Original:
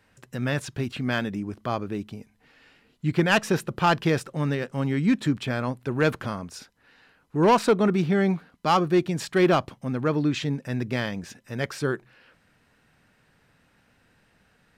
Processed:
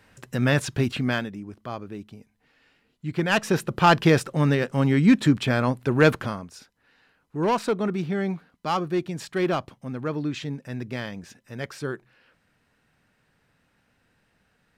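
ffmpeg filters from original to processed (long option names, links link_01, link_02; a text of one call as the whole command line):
ffmpeg -i in.wav -af "volume=16.5dB,afade=type=out:start_time=0.9:duration=0.41:silence=0.266073,afade=type=in:start_time=3.07:duration=0.95:silence=0.281838,afade=type=out:start_time=6.07:duration=0.41:silence=0.334965" out.wav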